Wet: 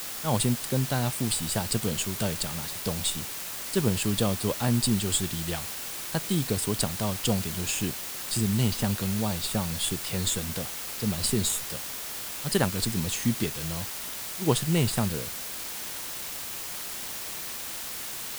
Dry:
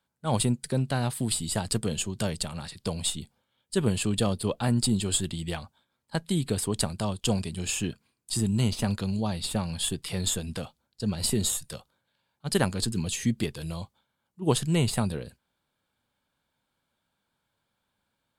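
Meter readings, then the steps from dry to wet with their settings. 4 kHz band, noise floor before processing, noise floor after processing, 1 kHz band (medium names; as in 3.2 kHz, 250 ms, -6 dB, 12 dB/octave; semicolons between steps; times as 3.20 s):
+2.0 dB, -80 dBFS, -36 dBFS, +1.0 dB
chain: word length cut 6-bit, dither triangular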